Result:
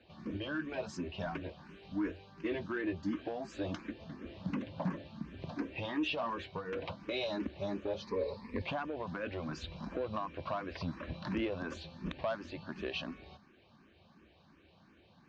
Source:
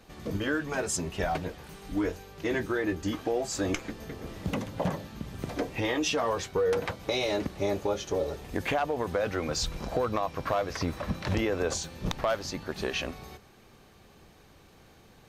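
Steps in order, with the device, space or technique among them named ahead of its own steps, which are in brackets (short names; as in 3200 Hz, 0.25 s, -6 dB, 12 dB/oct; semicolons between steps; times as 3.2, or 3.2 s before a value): barber-pole phaser into a guitar amplifier (endless phaser +2.8 Hz; soft clip -22.5 dBFS, distortion -20 dB; speaker cabinet 90–3900 Hz, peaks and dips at 120 Hz -10 dB, 450 Hz -10 dB, 790 Hz -7 dB, 1300 Hz -6 dB, 2000 Hz -7 dB, 3400 Hz -4 dB); 8.02–8.62 ripple EQ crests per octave 0.92, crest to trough 16 dB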